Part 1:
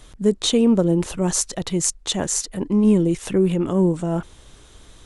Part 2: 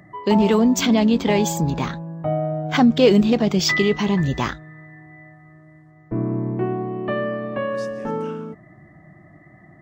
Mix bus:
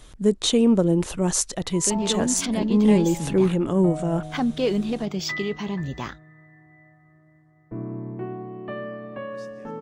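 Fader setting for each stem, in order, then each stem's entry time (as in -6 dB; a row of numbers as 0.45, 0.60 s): -1.5, -9.0 dB; 0.00, 1.60 s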